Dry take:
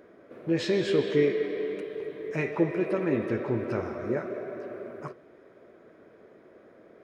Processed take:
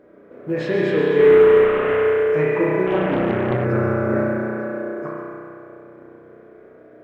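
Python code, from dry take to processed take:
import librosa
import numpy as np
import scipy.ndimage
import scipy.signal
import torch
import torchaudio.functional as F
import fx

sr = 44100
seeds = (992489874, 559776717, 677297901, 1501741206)

y = fx.delta_mod(x, sr, bps=16000, step_db=-23.0, at=(1.19, 1.96))
y = fx.dynamic_eq(y, sr, hz=1400.0, q=0.87, threshold_db=-45.0, ratio=4.0, max_db=6)
y = fx.bessel_highpass(y, sr, hz=330.0, order=6, at=(4.3, 4.79))
y = fx.echo_feedback(y, sr, ms=137, feedback_pct=50, wet_db=-9.0)
y = fx.rev_spring(y, sr, rt60_s=2.6, pass_ms=(32,), chirp_ms=80, drr_db=-5.0)
y = fx.quant_companded(y, sr, bits=8)
y = fx.high_shelf(y, sr, hz=2300.0, db=-12.0)
y = fx.doppler_dist(y, sr, depth_ms=0.53, at=(2.86, 3.65))
y = F.gain(torch.from_numpy(y), 2.0).numpy()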